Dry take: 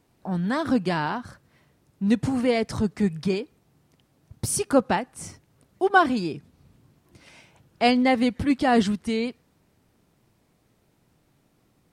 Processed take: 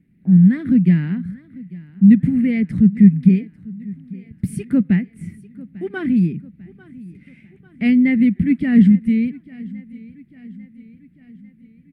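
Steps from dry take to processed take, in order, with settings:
drawn EQ curve 120 Hz 0 dB, 180 Hz +15 dB, 460 Hz −13 dB, 940 Hz −29 dB, 1,400 Hz −16 dB, 2,000 Hz +1 dB, 3,100 Hz −14 dB, 5,900 Hz −28 dB, 10,000 Hz −16 dB
repeating echo 846 ms, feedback 53%, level −21 dB
level +3 dB

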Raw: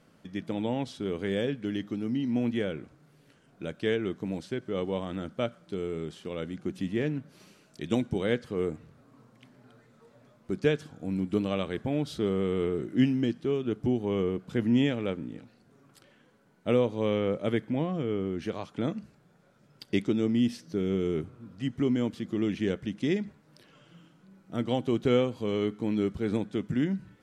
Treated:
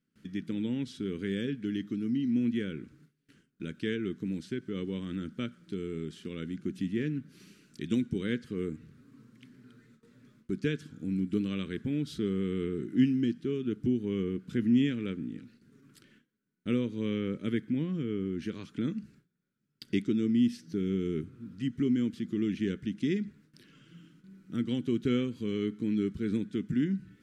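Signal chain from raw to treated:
noise gate with hold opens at −50 dBFS
drawn EQ curve 110 Hz 0 dB, 240 Hz +5 dB, 410 Hz −1 dB, 700 Hz −23 dB, 1,500 Hz 0 dB
in parallel at −2.5 dB: downward compressor, threshold −36 dBFS, peak gain reduction 20 dB
on the sum: level −5.5 dB

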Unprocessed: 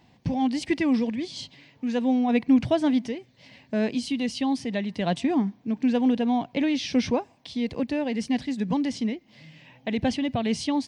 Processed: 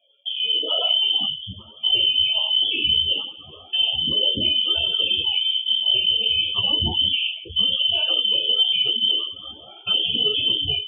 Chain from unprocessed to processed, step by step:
peak hold with a decay on every bin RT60 0.59 s
flat-topped bell 830 Hz −9.5 dB 3 octaves
flanger swept by the level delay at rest 2.3 ms, full sweep at −25.5 dBFS
spectral peaks only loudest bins 32
voice inversion scrambler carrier 3,300 Hz
downward compressor 4 to 1, threshold −28 dBFS, peak gain reduction 9.5 dB
on a send: delay with a high-pass on its return 195 ms, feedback 52%, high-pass 2,500 Hz, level −23 dB
on the sum: automatic gain control gain up to 14 dB
brickwall limiter −14 dBFS, peak gain reduction 8.5 dB
high-pass filter sweep 510 Hz → 82 Hz, 0:00.99–0:01.52
string-ensemble chorus
level +2.5 dB

